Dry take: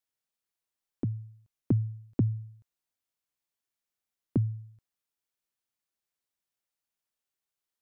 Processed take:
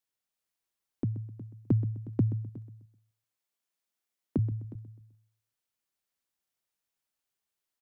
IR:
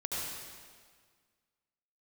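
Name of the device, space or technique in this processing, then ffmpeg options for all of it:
ducked delay: -filter_complex "[0:a]asettb=1/sr,asplit=3[s0][s1][s2];[s0]atrim=end=2.494[s3];[s1]atrim=start=2.49:end=4.39,asetpts=PTS-STARTPTS,afade=t=in:d=0.004:c=qsin,afade=t=out:st=1.896:d=0.004:c=qsin,highpass=170[s4];[s2]atrim=start=4.386[s5];[s3][s4]acrossfade=d=0.004:c1=hsin:c2=qsin[s6];[s6][s5]acrossfade=d=0.004:c1=qsin:c2=hsin,aecho=1:1:128|256|384:0.2|0.0638|0.0204,asplit=3[s7][s8][s9];[s8]adelay=363,volume=0.631[s10];[s9]apad=whole_len=377572[s11];[s10][s11]sidechaincompress=threshold=0.01:ratio=8:attack=5.1:release=1160[s12];[s7][s12]amix=inputs=2:normalize=0"

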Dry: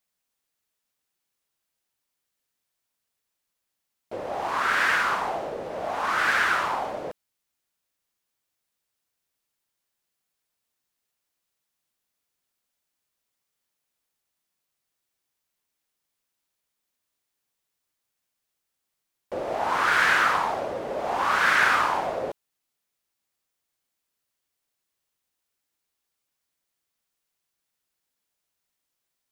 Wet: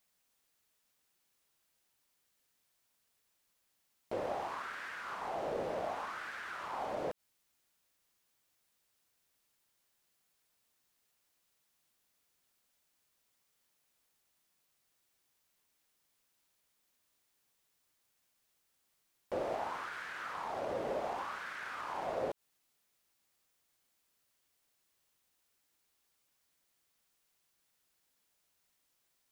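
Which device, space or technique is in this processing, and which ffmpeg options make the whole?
de-esser from a sidechain: -filter_complex "[0:a]asplit=2[s0][s1];[s1]highpass=4000,apad=whole_len=1292661[s2];[s0][s2]sidechaincompress=threshold=0.00112:ratio=6:attack=0.58:release=98,volume=1.5"

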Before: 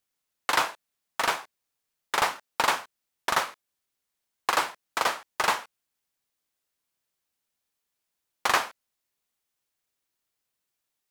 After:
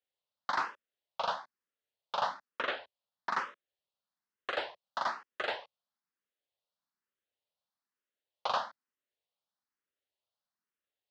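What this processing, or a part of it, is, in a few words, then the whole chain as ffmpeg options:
barber-pole phaser into a guitar amplifier: -filter_complex "[0:a]asplit=2[s0][s1];[s1]afreqshift=1.1[s2];[s0][s2]amix=inputs=2:normalize=1,asoftclip=type=tanh:threshold=0.119,highpass=100,equalizer=f=140:t=q:w=4:g=-7,equalizer=f=310:t=q:w=4:g=-5,equalizer=f=570:t=q:w=4:g=5,equalizer=f=2300:t=q:w=4:g=-7,lowpass=f=4400:w=0.5412,lowpass=f=4400:w=1.3066,asplit=3[s3][s4][s5];[s3]afade=t=out:st=2.49:d=0.02[s6];[s4]lowpass=f=5600:w=0.5412,lowpass=f=5600:w=1.3066,afade=t=in:st=2.49:d=0.02,afade=t=out:st=3.3:d=0.02[s7];[s5]afade=t=in:st=3.3:d=0.02[s8];[s6][s7][s8]amix=inputs=3:normalize=0,volume=0.668"

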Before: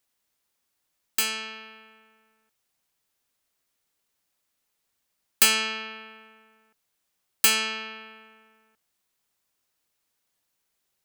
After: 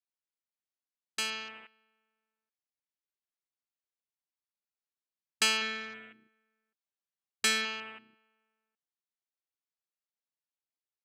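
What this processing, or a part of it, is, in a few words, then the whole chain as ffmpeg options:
over-cleaned archive recording: -filter_complex "[0:a]asettb=1/sr,asplit=3[s0][s1][s2];[s0]atrim=end=5.614[s3];[s1]atrim=start=5.61:end=7.65,asetpts=PTS-STARTPTS,afade=t=in:d=0.004:c=qsin,afade=t=out:st=2.036:d=0.004:c=qsin,aecho=1:1:5.1:0.61,atrim=end_sample=89964[s4];[s2]atrim=start=7.646[s5];[s3][s4]acrossfade=d=0.004:c1=hsin:c2=qsin[s6];[s6][s5]acrossfade=d=0.004:c1=qsin:c2=hsin,highpass=160,lowpass=6600,afwtdn=0.00891,volume=0.562"

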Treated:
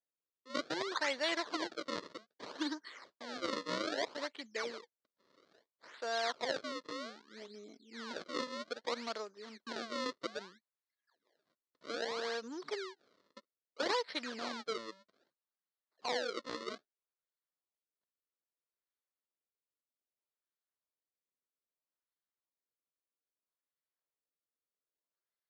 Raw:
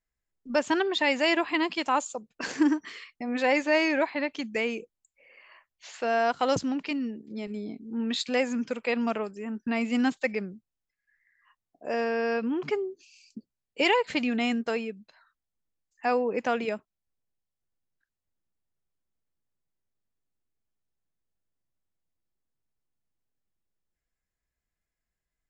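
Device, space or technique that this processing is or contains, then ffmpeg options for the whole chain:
circuit-bent sampling toy: -af "acrusher=samples=32:mix=1:aa=0.000001:lfo=1:lforange=51.2:lforate=0.62,highpass=490,equalizer=f=780:t=q:w=4:g=-7,equalizer=f=2600:t=q:w=4:g=-8,equalizer=f=4200:t=q:w=4:g=6,lowpass=f=5700:w=0.5412,lowpass=f=5700:w=1.3066,volume=0.447"

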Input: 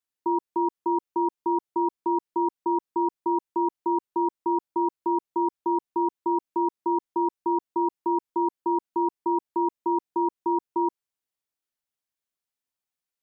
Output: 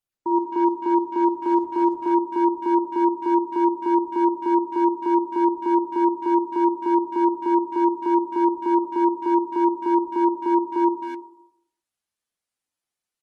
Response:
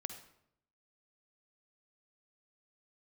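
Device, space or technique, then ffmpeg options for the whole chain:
speakerphone in a meeting room: -filter_complex "[1:a]atrim=start_sample=2205[s0];[0:a][s0]afir=irnorm=-1:irlink=0,asplit=2[s1][s2];[s2]adelay=260,highpass=300,lowpass=3400,asoftclip=type=hard:threshold=0.0631,volume=0.316[s3];[s1][s3]amix=inputs=2:normalize=0,dynaudnorm=f=200:g=3:m=2" -ar 48000 -c:a libopus -b:a 24k

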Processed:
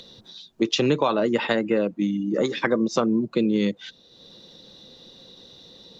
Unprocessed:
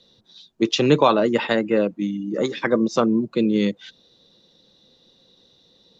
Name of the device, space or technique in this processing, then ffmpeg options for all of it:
upward and downward compression: -af "acompressor=mode=upward:threshold=0.00891:ratio=2.5,acompressor=threshold=0.1:ratio=4,volume=1.26"

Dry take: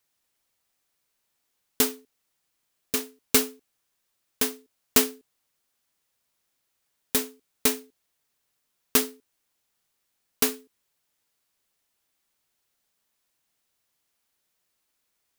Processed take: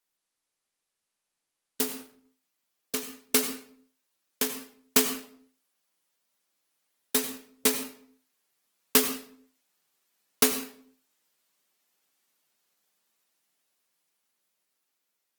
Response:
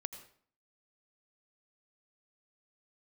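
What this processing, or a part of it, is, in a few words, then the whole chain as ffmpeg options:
far-field microphone of a smart speaker: -filter_complex "[1:a]atrim=start_sample=2205[s0];[0:a][s0]afir=irnorm=-1:irlink=0,highpass=f=160:w=0.5412,highpass=f=160:w=1.3066,dynaudnorm=f=940:g=7:m=5.96,volume=0.708" -ar 48000 -c:a libopus -b:a 20k

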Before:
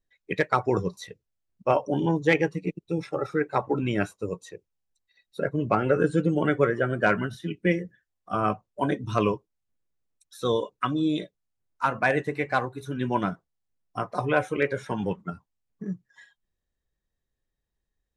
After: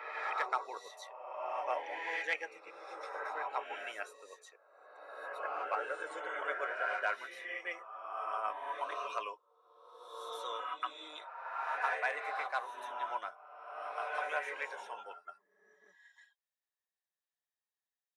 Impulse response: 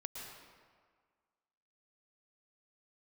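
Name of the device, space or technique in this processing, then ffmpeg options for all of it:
ghost voice: -filter_complex "[0:a]areverse[s0];[1:a]atrim=start_sample=2205[s1];[s0][s1]afir=irnorm=-1:irlink=0,areverse,highpass=f=660:w=0.5412,highpass=f=660:w=1.3066,volume=0.531"

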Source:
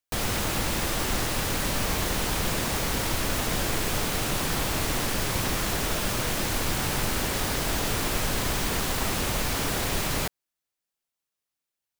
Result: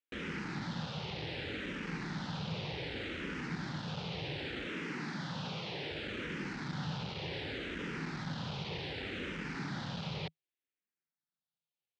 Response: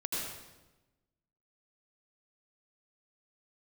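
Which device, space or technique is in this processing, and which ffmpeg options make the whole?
barber-pole phaser into a guitar amplifier: -filter_complex "[0:a]asettb=1/sr,asplit=3[s0][s1][s2];[s0]atrim=end=4.664[s3];[s1]atrim=start=4.66:end=5.91,asetpts=PTS-STARTPTS,afade=t=in:d=0.004:c=qsin,afade=t=out:st=1.246:d=0.004:c=qsin,highpass=160[s4];[s2]atrim=start=5.906[s5];[s3][s4]acrossfade=d=0.004:c1=hsin:c2=qsin[s6];[s6][s5]acrossfade=d=0.004:c1=qsin:c2=hsin,asplit=2[s7][s8];[s8]afreqshift=-0.66[s9];[s7][s9]amix=inputs=2:normalize=1,asoftclip=type=tanh:threshold=0.0376,highpass=110,equalizer=f=160:t=q:w=4:g=9,equalizer=f=660:t=q:w=4:g=-8,equalizer=f=1100:t=q:w=4:g=-8,lowpass=f=4000:w=0.5412,lowpass=f=4000:w=1.3066,volume=0.668"

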